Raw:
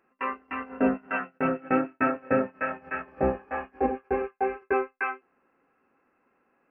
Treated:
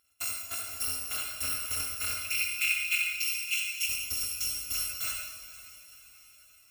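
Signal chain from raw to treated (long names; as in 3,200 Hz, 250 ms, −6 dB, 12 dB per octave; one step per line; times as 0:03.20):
samples in bit-reversed order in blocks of 256 samples
brickwall limiter −21 dBFS, peak gain reduction 10.5 dB
0:02.17–0:03.89: high-pass with resonance 2,400 Hz, resonance Q 9.1
feedback delay with all-pass diffusion 507 ms, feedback 54%, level −15.5 dB
on a send at −2 dB: convolution reverb RT60 1.4 s, pre-delay 54 ms
on the sum: level −3 dB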